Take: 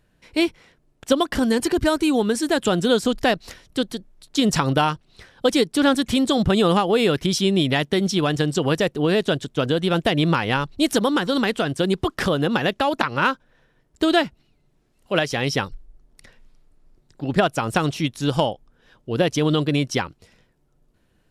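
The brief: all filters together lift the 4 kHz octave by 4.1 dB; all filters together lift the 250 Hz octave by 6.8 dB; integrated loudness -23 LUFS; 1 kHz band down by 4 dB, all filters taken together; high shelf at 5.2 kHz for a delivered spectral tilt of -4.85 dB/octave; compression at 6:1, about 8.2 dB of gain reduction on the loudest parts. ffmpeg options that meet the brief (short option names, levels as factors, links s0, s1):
-af "equalizer=f=250:t=o:g=9,equalizer=f=1000:t=o:g=-6.5,equalizer=f=4000:t=o:g=8,highshelf=f=5200:g=-6,acompressor=threshold=0.141:ratio=6,volume=0.944"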